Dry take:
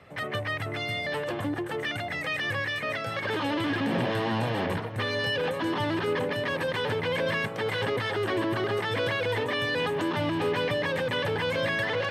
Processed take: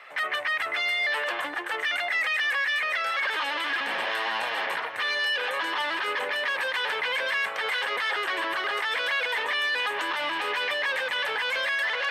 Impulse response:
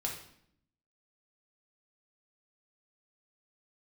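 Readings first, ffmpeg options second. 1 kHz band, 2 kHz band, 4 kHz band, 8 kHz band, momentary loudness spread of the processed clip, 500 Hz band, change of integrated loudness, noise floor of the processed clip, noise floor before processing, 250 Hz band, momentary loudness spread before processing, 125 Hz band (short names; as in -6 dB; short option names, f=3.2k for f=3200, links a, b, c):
+2.5 dB, +6.0 dB, +4.5 dB, +3.5 dB, 3 LU, -6.5 dB, +2.0 dB, -34 dBFS, -35 dBFS, -16.0 dB, 4 LU, under -30 dB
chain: -filter_complex "[0:a]highpass=740,equalizer=f=1.9k:t=o:w=2.4:g=9.5,acrossover=split=5100[a][b];[a]alimiter=limit=-22.5dB:level=0:latency=1:release=20[c];[c][b]amix=inputs=2:normalize=0,volume=2dB"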